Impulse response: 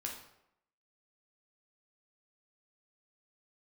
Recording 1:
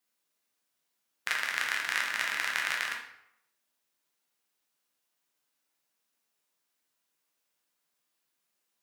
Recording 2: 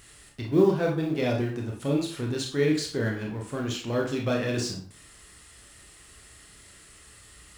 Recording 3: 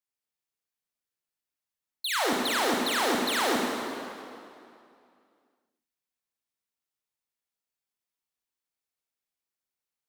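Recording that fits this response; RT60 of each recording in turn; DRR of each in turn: 1; 0.80, 0.45, 2.5 seconds; −0.5, −0.5, −2.5 decibels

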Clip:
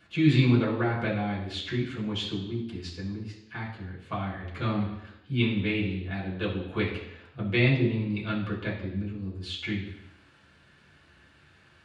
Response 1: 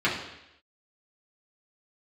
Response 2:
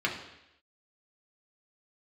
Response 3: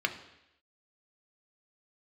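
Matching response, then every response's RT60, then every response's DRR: 1; 0.85, 0.85, 0.85 seconds; −8.0, −2.0, 5.0 decibels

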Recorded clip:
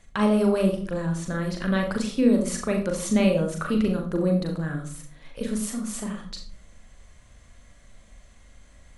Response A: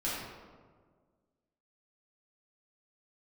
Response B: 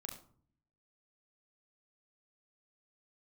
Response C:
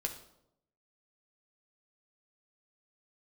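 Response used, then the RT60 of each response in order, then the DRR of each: B; 1.6, 0.50, 0.80 seconds; −9.0, 2.0, 3.0 decibels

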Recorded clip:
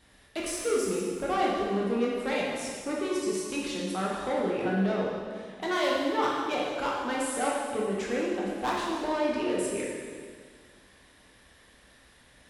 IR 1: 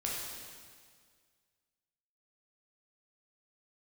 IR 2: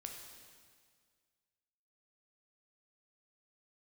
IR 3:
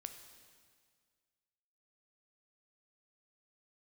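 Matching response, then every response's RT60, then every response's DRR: 1; 1.9, 1.9, 1.9 seconds; −4.5, 1.5, 6.5 decibels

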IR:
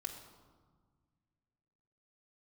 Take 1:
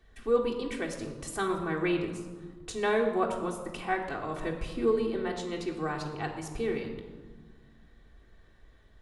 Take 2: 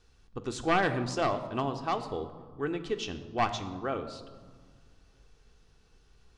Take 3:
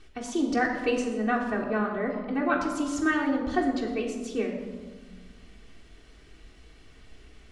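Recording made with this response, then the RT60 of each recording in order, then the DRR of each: 1; 1.6, 1.6, 1.5 seconds; −0.5, 6.0, −4.5 decibels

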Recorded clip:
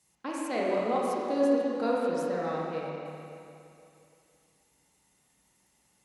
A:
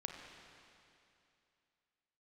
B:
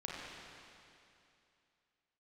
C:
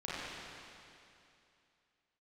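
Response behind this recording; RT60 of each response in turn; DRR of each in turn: B; 2.7, 2.7, 2.7 seconds; 2.0, −5.0, −10.0 decibels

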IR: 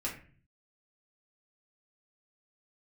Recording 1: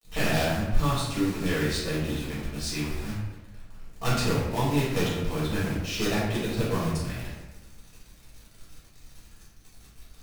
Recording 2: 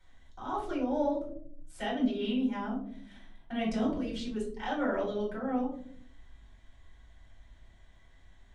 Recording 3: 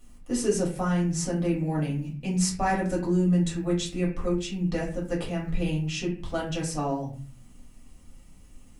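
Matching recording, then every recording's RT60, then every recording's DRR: 3; 1.1, 0.60, 0.40 seconds; −8.5, −5.5, −4.5 decibels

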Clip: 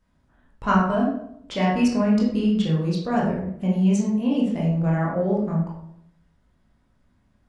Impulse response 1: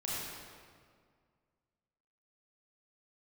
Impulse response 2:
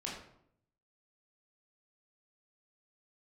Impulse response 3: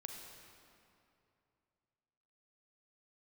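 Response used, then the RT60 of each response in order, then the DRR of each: 2; 2.0, 0.70, 2.7 seconds; −7.0, −4.5, 2.0 decibels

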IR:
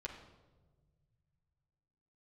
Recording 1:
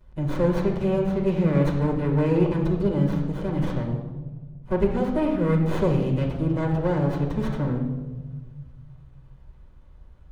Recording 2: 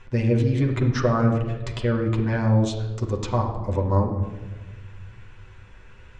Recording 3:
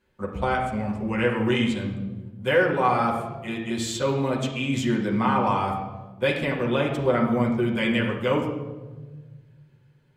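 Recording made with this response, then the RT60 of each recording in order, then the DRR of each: 2; 1.3, 1.4, 1.3 seconds; −13.0, −2.0, −6.5 decibels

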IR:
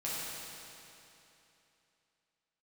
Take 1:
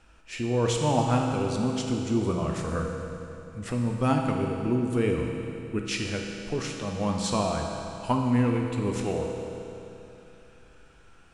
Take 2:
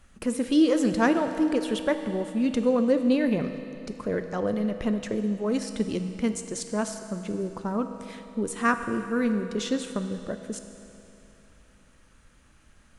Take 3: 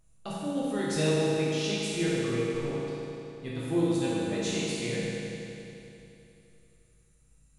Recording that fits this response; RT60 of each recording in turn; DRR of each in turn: 3; 3.0, 3.0, 3.0 seconds; 0.5, 7.5, −9.0 decibels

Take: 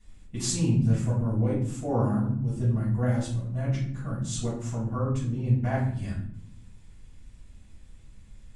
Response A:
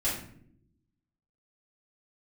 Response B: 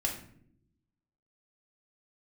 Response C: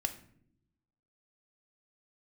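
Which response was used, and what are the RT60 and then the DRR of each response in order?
A; non-exponential decay, non-exponential decay, non-exponential decay; −9.0, 0.0, 7.5 decibels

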